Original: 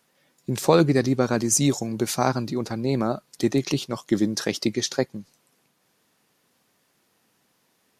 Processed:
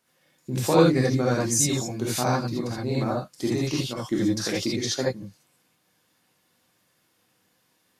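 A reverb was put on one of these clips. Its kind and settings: non-linear reverb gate 0.1 s rising, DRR -5.5 dB; gain -7 dB

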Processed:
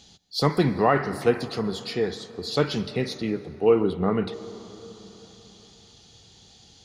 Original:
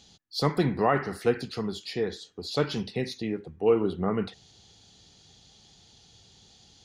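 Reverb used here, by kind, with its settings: plate-style reverb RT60 4 s, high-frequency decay 0.4×, pre-delay 0.11 s, DRR 15 dB; gain +3.5 dB

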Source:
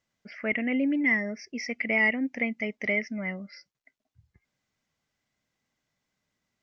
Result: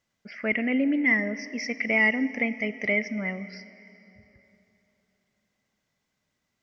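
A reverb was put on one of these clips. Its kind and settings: plate-style reverb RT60 3.4 s, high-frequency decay 0.85×, DRR 13.5 dB; gain +2 dB

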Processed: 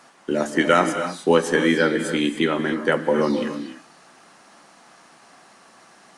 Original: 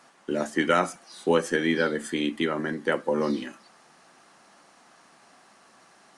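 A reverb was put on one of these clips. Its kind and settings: non-linear reverb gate 0.32 s rising, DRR 8.5 dB; gain +5 dB

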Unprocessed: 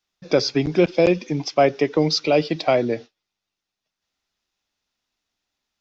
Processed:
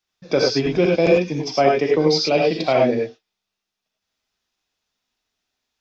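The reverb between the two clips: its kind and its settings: non-linear reverb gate 0.12 s rising, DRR -1 dB; gain -1.5 dB

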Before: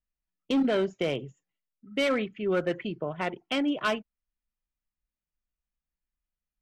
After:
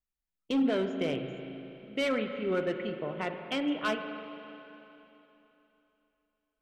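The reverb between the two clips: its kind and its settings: spring tank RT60 3.2 s, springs 37/41 ms, chirp 40 ms, DRR 6 dB; gain -4 dB

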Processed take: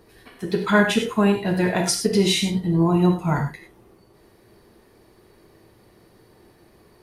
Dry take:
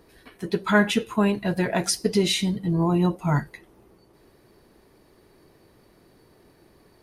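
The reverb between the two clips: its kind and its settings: non-linear reverb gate 0.13 s flat, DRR 3 dB; gain +1 dB

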